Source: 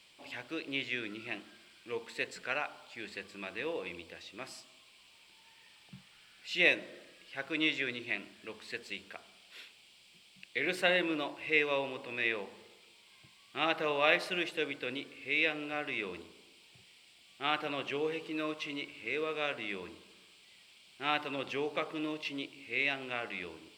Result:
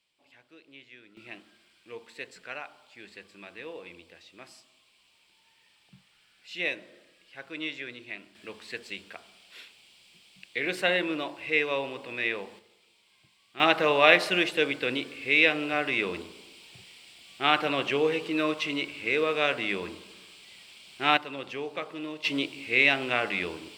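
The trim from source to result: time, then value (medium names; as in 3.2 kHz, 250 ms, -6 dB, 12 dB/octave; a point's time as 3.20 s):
-15 dB
from 1.17 s -4 dB
from 8.35 s +3 dB
from 12.59 s -4 dB
from 13.60 s +9 dB
from 21.17 s 0 dB
from 22.24 s +10.5 dB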